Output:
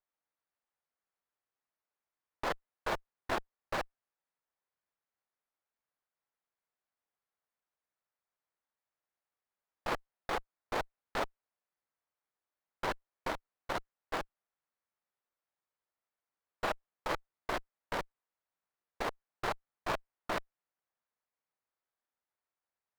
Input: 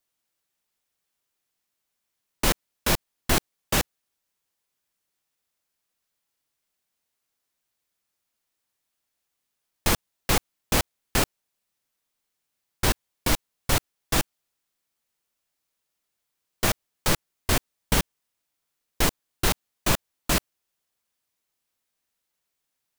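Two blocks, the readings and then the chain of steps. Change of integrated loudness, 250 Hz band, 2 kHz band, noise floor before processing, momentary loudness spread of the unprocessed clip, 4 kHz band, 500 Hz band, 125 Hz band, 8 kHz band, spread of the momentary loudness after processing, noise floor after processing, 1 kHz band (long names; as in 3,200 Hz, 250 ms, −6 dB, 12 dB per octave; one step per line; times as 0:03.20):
−13.0 dB, −15.5 dB, −10.0 dB, −81 dBFS, 2 LU, −17.0 dB, −7.5 dB, −21.5 dB, −25.5 dB, 3 LU, below −85 dBFS, −6.0 dB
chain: tube saturation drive 12 dB, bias 0.55
three-way crossover with the lows and the highs turned down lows −17 dB, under 450 Hz, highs −23 dB, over 2,700 Hz
windowed peak hold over 9 samples
level −2 dB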